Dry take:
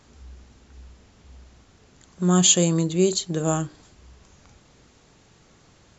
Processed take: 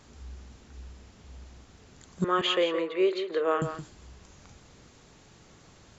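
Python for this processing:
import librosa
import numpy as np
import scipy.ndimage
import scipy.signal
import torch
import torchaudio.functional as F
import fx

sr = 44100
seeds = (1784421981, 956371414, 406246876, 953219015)

y = fx.cabinet(x, sr, low_hz=420.0, low_slope=24, high_hz=2900.0, hz=(450.0, 740.0, 1200.0, 2000.0), db=(6, -9, 5, 8), at=(2.24, 3.62))
y = y + 10.0 ** (-9.5 / 20.0) * np.pad(y, (int(170 * sr / 1000.0), 0))[:len(y)]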